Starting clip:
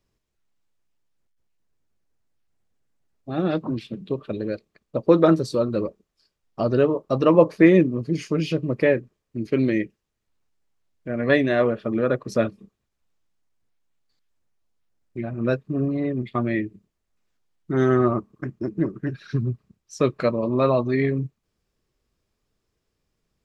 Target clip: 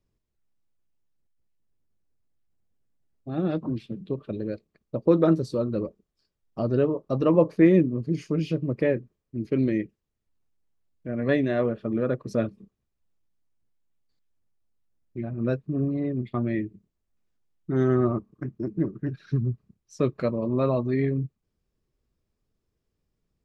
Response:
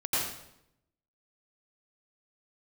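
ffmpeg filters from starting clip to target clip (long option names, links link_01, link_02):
-af "lowshelf=frequency=500:gain=8.5,atempo=1,volume=-9dB"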